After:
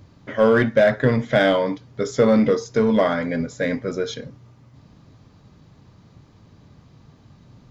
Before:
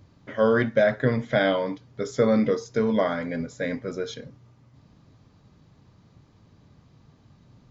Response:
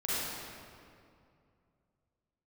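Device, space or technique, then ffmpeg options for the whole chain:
parallel distortion: -filter_complex "[0:a]asplit=2[s0][s1];[s1]asoftclip=type=hard:threshold=0.0891,volume=0.447[s2];[s0][s2]amix=inputs=2:normalize=0,volume=1.33"

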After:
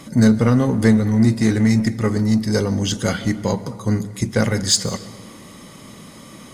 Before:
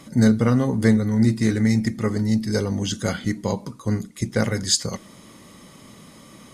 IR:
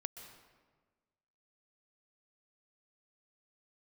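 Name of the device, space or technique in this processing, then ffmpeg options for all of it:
saturated reverb return: -filter_complex "[0:a]asplit=2[s0][s1];[1:a]atrim=start_sample=2205[s2];[s1][s2]afir=irnorm=-1:irlink=0,asoftclip=type=tanh:threshold=0.0531,volume=0.794[s3];[s0][s3]amix=inputs=2:normalize=0,volume=1.19"

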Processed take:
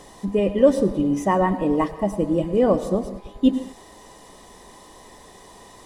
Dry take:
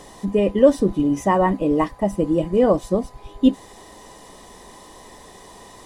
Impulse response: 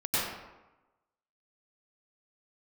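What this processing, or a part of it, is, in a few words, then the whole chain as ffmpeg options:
keyed gated reverb: -filter_complex "[0:a]asplit=3[s0][s1][s2];[1:a]atrim=start_sample=2205[s3];[s1][s3]afir=irnorm=-1:irlink=0[s4];[s2]apad=whole_len=258087[s5];[s4][s5]sidechaingate=range=0.0224:threshold=0.0141:ratio=16:detection=peak,volume=0.0891[s6];[s0][s6]amix=inputs=2:normalize=0,volume=0.75"

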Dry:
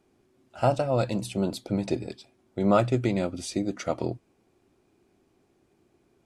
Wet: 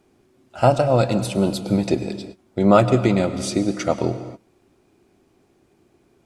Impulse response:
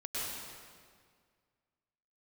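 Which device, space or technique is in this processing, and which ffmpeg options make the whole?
keyed gated reverb: -filter_complex "[0:a]asplit=3[s0][s1][s2];[1:a]atrim=start_sample=2205[s3];[s1][s3]afir=irnorm=-1:irlink=0[s4];[s2]apad=whole_len=275656[s5];[s4][s5]sidechaingate=range=0.0224:threshold=0.00158:ratio=16:detection=peak,volume=0.211[s6];[s0][s6]amix=inputs=2:normalize=0,volume=2.11"

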